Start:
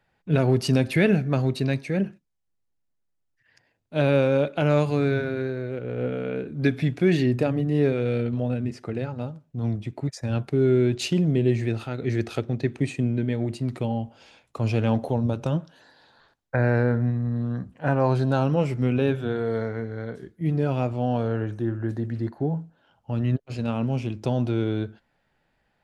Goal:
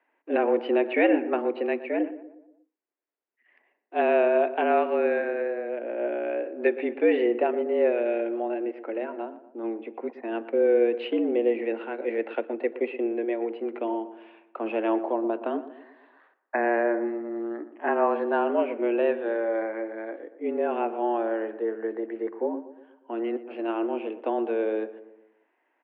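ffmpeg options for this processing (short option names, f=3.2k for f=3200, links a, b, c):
-filter_complex "[0:a]asplit=2[a][b];[b]adelay=119,lowpass=f=1.4k:p=1,volume=-13dB,asplit=2[c][d];[d]adelay=119,lowpass=f=1.4k:p=1,volume=0.5,asplit=2[e][f];[f]adelay=119,lowpass=f=1.4k:p=1,volume=0.5,asplit=2[g][h];[h]adelay=119,lowpass=f=1.4k:p=1,volume=0.5,asplit=2[i][j];[j]adelay=119,lowpass=f=1.4k:p=1,volume=0.5[k];[a][c][e][g][i][k]amix=inputs=6:normalize=0,highpass=f=190:t=q:w=0.5412,highpass=f=190:t=q:w=1.307,lowpass=f=2.6k:t=q:w=0.5176,lowpass=f=2.6k:t=q:w=0.7071,lowpass=f=2.6k:t=q:w=1.932,afreqshift=110"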